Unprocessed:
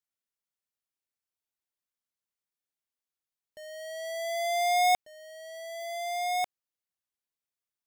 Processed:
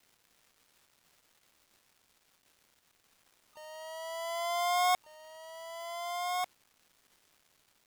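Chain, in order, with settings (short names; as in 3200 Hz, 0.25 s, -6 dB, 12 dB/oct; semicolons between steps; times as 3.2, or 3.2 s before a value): crackle 600/s -49 dBFS; harmoniser +7 st -5 dB, +12 st -16 dB; gain -5.5 dB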